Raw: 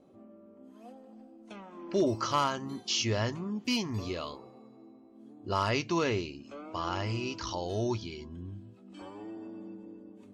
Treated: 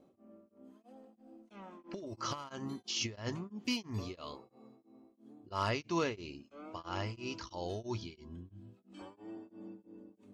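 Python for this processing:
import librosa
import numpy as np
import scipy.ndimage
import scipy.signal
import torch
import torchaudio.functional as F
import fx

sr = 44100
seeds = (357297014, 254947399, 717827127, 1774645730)

y = fx.over_compress(x, sr, threshold_db=-31.0, ratio=-0.5, at=(1.25, 3.46), fade=0.02)
y = y * np.abs(np.cos(np.pi * 3.0 * np.arange(len(y)) / sr))
y = y * librosa.db_to_amplitude(-3.0)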